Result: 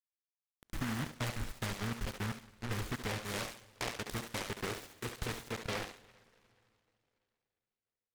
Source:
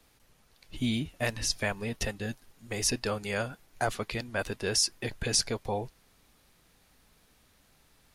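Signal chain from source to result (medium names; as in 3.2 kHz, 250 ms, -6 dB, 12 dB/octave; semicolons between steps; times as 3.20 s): 0.99–3.21 s: bass shelf 260 Hz +7.5 dB; compression 4:1, threshold -40 dBFS, peak gain reduction 15 dB; bit crusher 7-bit; distance through air 470 m; thinning echo 70 ms, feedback 37%, high-pass 440 Hz, level -4.5 dB; reverberation RT60 3.0 s, pre-delay 13 ms, DRR 19.5 dB; delay time shaken by noise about 1.3 kHz, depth 0.33 ms; trim +4 dB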